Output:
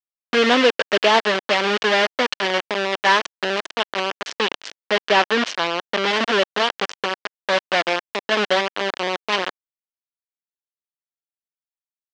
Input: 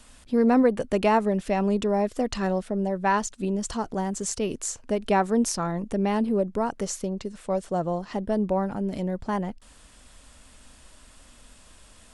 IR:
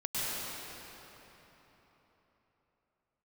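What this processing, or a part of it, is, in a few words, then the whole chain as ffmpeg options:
hand-held game console: -filter_complex "[0:a]acrusher=bits=3:mix=0:aa=0.000001,highpass=400,equalizer=f=800:t=q:w=4:g=-4,equalizer=f=1.7k:t=q:w=4:g=4,equalizer=f=3k:t=q:w=4:g=6,lowpass=f=5.1k:w=0.5412,lowpass=f=5.1k:w=1.3066,asettb=1/sr,asplit=3[a][b][c];[a]atrim=end=4.264[d];[b]atrim=start=4.26:end=6.08,asetpts=PTS-STARTPTS,afade=t=in:d=0.004:c=qsin,afade=t=out:st=1.816:d=0.004:c=qsin,lowpass=7.5k[e];[c]atrim=start=6.076[f];[d][e]acrossfade=d=0.004:c1=hsin:c2=qsin[g];[g][f]acrossfade=d=0.004:c1=qsin:c2=hsin,volume=6.5dB"

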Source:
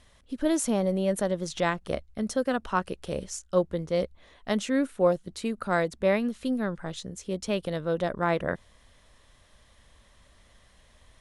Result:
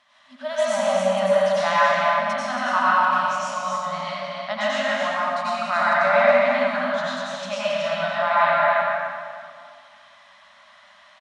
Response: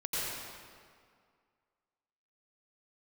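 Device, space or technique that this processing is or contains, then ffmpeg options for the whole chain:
station announcement: -filter_complex "[0:a]highpass=490,lowpass=4.8k,equalizer=f=1.2k:t=o:w=0.59:g=4.5,aecho=1:1:198.3|274.1:0.282|0.562[a];[1:a]atrim=start_sample=2205[b];[a][b]afir=irnorm=-1:irlink=0,asettb=1/sr,asplit=3[c][d][e];[c]atrim=end=5.934[f];[d]atrim=start=5.93:end=6.59,asetpts=PTS-STARTPTS,afade=t=in:d=0.004:c=qsin,afade=t=out:st=0.656:d=0.004:c=qsin,lowpass=8k[g];[e]atrim=start=6.586[h];[f][g]acrossfade=d=0.004:c1=hsin:c2=qsin[i];[i][h]acrossfade=d=0.004:c1=qsin:c2=hsin,afftfilt=real='re*(1-between(b*sr/4096,260,550))':imag='im*(1-between(b*sr/4096,260,550))':win_size=4096:overlap=0.75,highshelf=f=7.8k:g=-5.5,volume=4.5dB"

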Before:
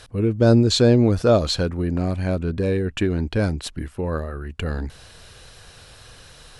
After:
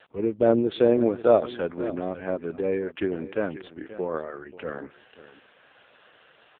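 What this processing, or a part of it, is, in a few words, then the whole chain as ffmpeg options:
satellite phone: -af "highpass=340,lowpass=3.2k,aecho=1:1:537:0.168" -ar 8000 -c:a libopencore_amrnb -b:a 4750

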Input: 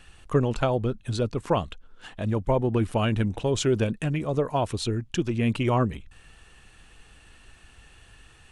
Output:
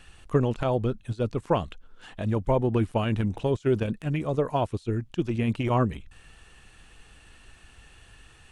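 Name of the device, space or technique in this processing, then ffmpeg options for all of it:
de-esser from a sidechain: -filter_complex "[0:a]asplit=2[a][b];[b]highpass=f=5.5k:w=0.5412,highpass=f=5.5k:w=1.3066,apad=whole_len=375607[c];[a][c]sidechaincompress=threshold=-58dB:ratio=16:attack=4.3:release=24"

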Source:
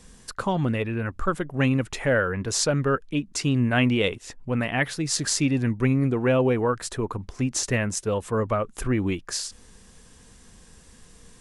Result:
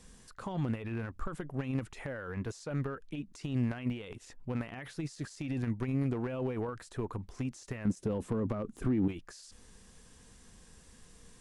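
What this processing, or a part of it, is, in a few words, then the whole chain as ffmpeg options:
de-esser from a sidechain: -filter_complex "[0:a]asettb=1/sr,asplit=3[a][b][c];[a]atrim=end=7.854[d];[b]atrim=start=7.85:end=9.08,asetpts=PTS-STARTPTS,afade=t=in:d=0.004:c=qsin,afade=t=out:st=1.226:d=0.004:c=qsin,equalizer=f=240:t=o:w=2.1:g=15[e];[c]atrim=start=9.076[f];[d][e]acrossfade=d=0.004:c1=hsin:c2=qsin[g];[g][f]acrossfade=d=0.004:c1=qsin:c2=hsin,asplit=2[h][i];[i]highpass=f=6.2k:p=1,apad=whole_len=503015[j];[h][j]sidechaincompress=threshold=-46dB:ratio=6:attack=0.56:release=29,volume=-6dB"

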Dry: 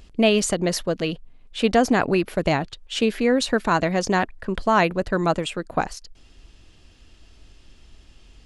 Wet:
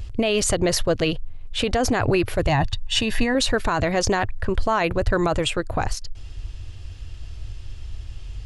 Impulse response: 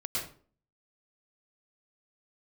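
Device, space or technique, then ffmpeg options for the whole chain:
car stereo with a boomy subwoofer: -filter_complex "[0:a]lowshelf=f=140:t=q:w=3:g=9.5,alimiter=limit=-17dB:level=0:latency=1:release=27,asettb=1/sr,asplit=3[a][b][c];[a]atrim=end=2.494[d];[b]atrim=start=2.49:end=3.35,asetpts=PTS-STARTPTS,afade=t=in:d=0.004:c=qsin,afade=t=out:st=0.856:d=0.004:c=qsin,aecho=1:1:1.1:0.6,atrim=end_sample=37926[e];[c]atrim=start=3.346[f];[d][e]acrossfade=d=0.004:c1=hsin:c2=qsin[g];[g][f]acrossfade=d=0.004:c1=qsin:c2=hsin,volume=5.5dB"

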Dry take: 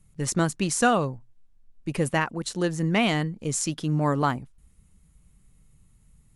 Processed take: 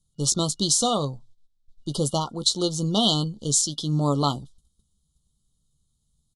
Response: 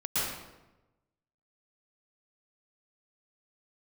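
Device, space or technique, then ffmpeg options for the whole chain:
over-bright horn tweeter: -filter_complex "[0:a]highshelf=f=2.9k:t=q:w=3:g=9,alimiter=limit=-7dB:level=0:latency=1:release=382,agate=range=-14dB:threshold=-50dB:ratio=16:detection=peak,afftfilt=real='re*(1-between(b*sr/4096,1400,2900))':imag='im*(1-between(b*sr/4096,1400,2900))':win_size=4096:overlap=0.75,lowpass=8.6k,asplit=2[a][b];[b]adelay=14,volume=-10dB[c];[a][c]amix=inputs=2:normalize=0"

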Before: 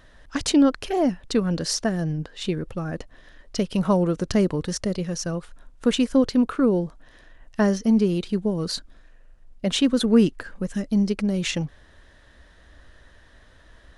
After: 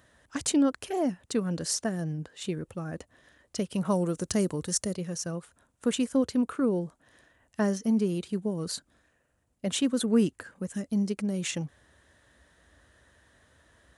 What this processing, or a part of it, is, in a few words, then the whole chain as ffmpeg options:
budget condenser microphone: -filter_complex "[0:a]highpass=f=65:w=0.5412,highpass=f=65:w=1.3066,highshelf=f=6.2k:t=q:w=1.5:g=6.5,asettb=1/sr,asplit=3[a][b][c];[a]atrim=end=3.834[d];[b]atrim=start=3.83:end=4.93,asetpts=PTS-STARTPTS,afade=t=in:d=0.004:c=qsin,afade=t=out:st=1.096:d=0.004:c=qsin,adynamicequalizer=threshold=0.00631:dfrequency=4200:dqfactor=0.7:tfrequency=4200:tqfactor=0.7:attack=5:release=100:ratio=0.375:range=4:mode=boostabove:tftype=highshelf[e];[c]atrim=start=4.926[f];[d][e]acrossfade=d=0.004:c1=hsin:c2=qsin[g];[g][f]acrossfade=d=0.004:c1=qsin:c2=hsin,volume=-6.5dB"

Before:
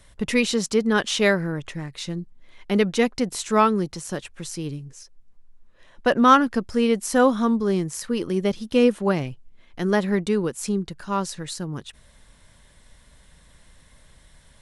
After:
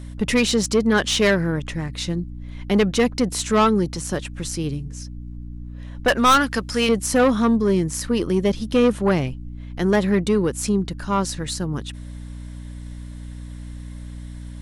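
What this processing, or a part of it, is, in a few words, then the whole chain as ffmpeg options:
valve amplifier with mains hum: -filter_complex "[0:a]asettb=1/sr,asplit=3[a][b][c];[a]atrim=end=6.084[d];[b]atrim=start=6.08:end=6.89,asetpts=PTS-STARTPTS,afade=t=in:d=0.004:c=qsin,afade=t=out:st=0.806:d=0.004:c=qsin,tiltshelf=f=780:g=-8[e];[c]atrim=start=6.886[f];[d][e]acrossfade=d=0.004:c1=hsin:c2=qsin[g];[g][f]acrossfade=d=0.004:c1=qsin:c2=hsin,aeval=exprs='(tanh(6.31*val(0)+0.15)-tanh(0.15))/6.31':c=same,aeval=exprs='val(0)+0.0126*(sin(2*PI*60*n/s)+sin(2*PI*2*60*n/s)/2+sin(2*PI*3*60*n/s)/3+sin(2*PI*4*60*n/s)/4+sin(2*PI*5*60*n/s)/5)':c=same,volume=5dB"

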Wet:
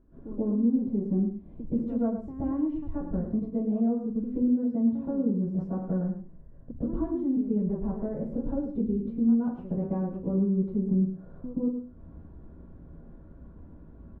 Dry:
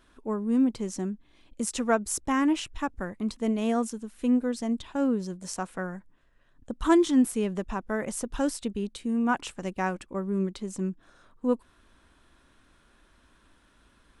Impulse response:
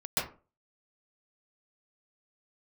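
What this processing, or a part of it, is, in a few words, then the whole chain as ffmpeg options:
television next door: -filter_complex "[0:a]acompressor=threshold=-42dB:ratio=4,lowpass=350[a];[1:a]atrim=start_sample=2205[b];[a][b]afir=irnorm=-1:irlink=0,asettb=1/sr,asplit=3[c][d][e];[c]atrim=end=4.424[f];[d]atrim=start=4.42:end=5.07,asetpts=PTS-STARTPTS,afade=t=in:d=0.004:c=qsin,afade=t=out:st=0.646:d=0.004:c=qsin,highpass=100[g];[e]atrim=start=5.066[h];[f][g]acrossfade=d=0.004:c1=hsin:c2=qsin[i];[i][h]acrossfade=d=0.004:c1=qsin:c2=hsin,aecho=1:1:105:0.355,volume=9dB"

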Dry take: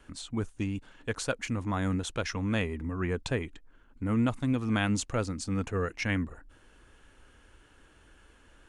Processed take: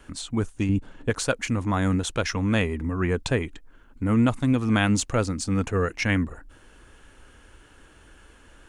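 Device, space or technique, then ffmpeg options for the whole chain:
exciter from parts: -filter_complex "[0:a]asettb=1/sr,asplit=3[a][b][c];[a]atrim=end=0.694[d];[b]atrim=start=0.69:end=1.1,asetpts=PTS-STARTPTS,afade=t=in:d=0.004:c=qsin,afade=t=out:st=0.406:d=0.004:c=qsin,tiltshelf=f=860:g=6[e];[c]atrim=start=1.096[f];[d][e]acrossfade=d=0.004:c1=hsin:c2=qsin[g];[g][f]acrossfade=d=0.004:c1=qsin:c2=hsin,asplit=2[h][i];[i]highpass=4.9k,asoftclip=type=tanh:threshold=-37dB,volume=-11.5dB[j];[h][j]amix=inputs=2:normalize=0,volume=6.5dB"

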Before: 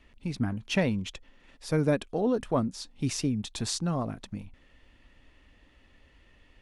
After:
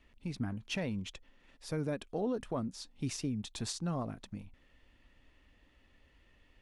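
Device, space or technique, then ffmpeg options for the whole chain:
clipper into limiter: -af "asoftclip=type=hard:threshold=-13.5dB,alimiter=limit=-19.5dB:level=0:latency=1:release=113,volume=-6dB"

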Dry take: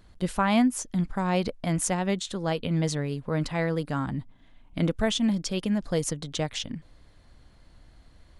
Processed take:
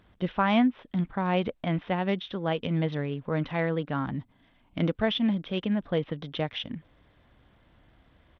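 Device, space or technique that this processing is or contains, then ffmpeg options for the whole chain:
Bluetooth headset: -af "highpass=f=110:p=1,aresample=8000,aresample=44100" -ar 32000 -c:a sbc -b:a 64k

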